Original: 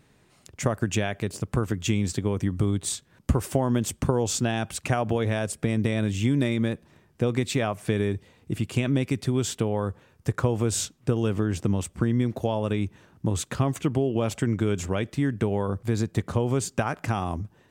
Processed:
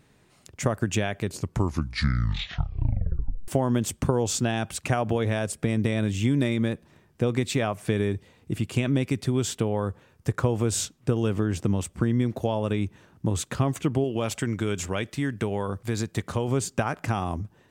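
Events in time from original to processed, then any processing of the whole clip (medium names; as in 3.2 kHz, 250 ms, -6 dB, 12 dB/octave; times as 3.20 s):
1.23 s: tape stop 2.25 s
14.04–16.48 s: tilt shelf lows -3.5 dB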